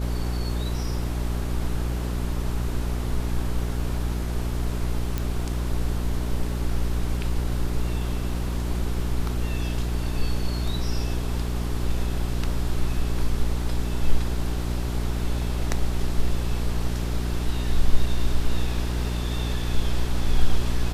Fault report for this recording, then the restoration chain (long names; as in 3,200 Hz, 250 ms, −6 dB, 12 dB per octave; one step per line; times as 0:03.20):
mains hum 60 Hz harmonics 7 −27 dBFS
0:05.18: click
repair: click removal
hum removal 60 Hz, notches 7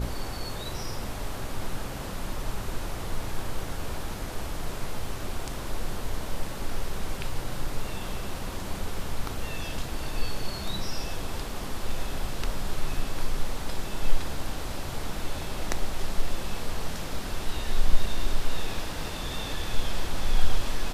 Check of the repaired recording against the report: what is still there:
none of them is left